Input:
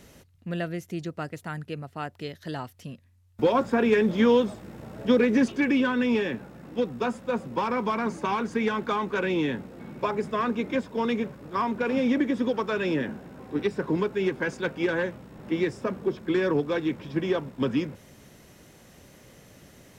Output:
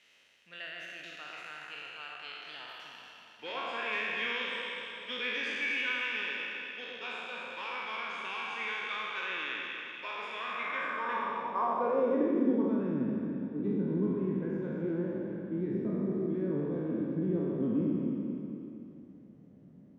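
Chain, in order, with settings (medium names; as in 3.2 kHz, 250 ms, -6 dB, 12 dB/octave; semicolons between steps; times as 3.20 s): spectral sustain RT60 2.58 s; echo whose repeats swap between lows and highs 119 ms, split 1.3 kHz, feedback 73%, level -4.5 dB; band-pass sweep 2.7 kHz -> 200 Hz, 10.45–12.96 s; trim -3 dB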